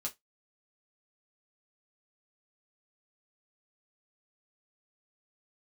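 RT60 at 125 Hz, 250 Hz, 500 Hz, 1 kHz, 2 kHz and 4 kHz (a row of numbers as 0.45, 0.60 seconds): 0.15, 0.15, 0.15, 0.15, 0.15, 0.15 seconds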